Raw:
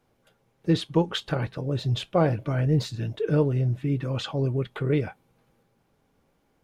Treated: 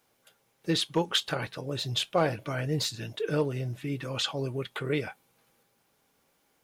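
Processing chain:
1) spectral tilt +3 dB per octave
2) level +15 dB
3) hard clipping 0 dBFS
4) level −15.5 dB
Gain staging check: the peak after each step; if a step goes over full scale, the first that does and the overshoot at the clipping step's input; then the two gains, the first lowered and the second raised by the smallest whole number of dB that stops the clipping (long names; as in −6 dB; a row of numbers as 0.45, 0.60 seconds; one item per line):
−9.0, +6.0, 0.0, −15.5 dBFS
step 2, 6.0 dB
step 2 +9 dB, step 4 −9.5 dB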